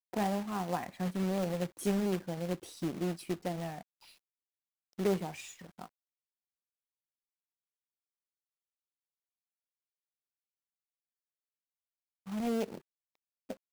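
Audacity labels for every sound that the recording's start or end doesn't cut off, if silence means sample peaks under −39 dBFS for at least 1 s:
4.990000	5.860000	sound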